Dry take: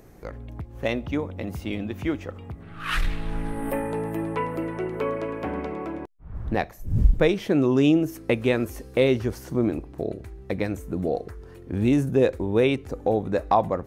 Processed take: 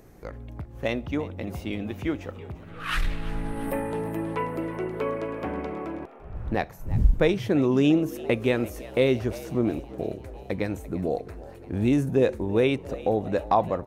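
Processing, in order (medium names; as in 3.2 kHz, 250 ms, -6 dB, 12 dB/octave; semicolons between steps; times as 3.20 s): frequency-shifting echo 342 ms, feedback 61%, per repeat +79 Hz, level -18.5 dB; trim -1.5 dB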